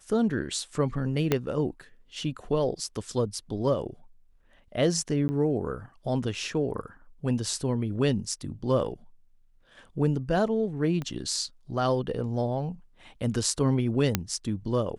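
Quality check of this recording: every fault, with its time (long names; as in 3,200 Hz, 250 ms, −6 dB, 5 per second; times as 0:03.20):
0:01.32: click −9 dBFS
0:05.28–0:05.29: drop-out 10 ms
0:11.02: click −21 dBFS
0:14.15: click −7 dBFS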